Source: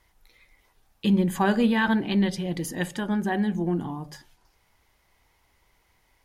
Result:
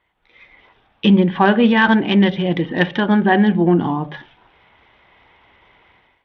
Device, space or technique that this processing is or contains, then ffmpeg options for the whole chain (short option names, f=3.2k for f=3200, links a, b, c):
Bluetooth headset: -af "highpass=f=190:p=1,dynaudnorm=f=150:g=5:m=16dB,aresample=8000,aresample=44100" -ar 32000 -c:a sbc -b:a 64k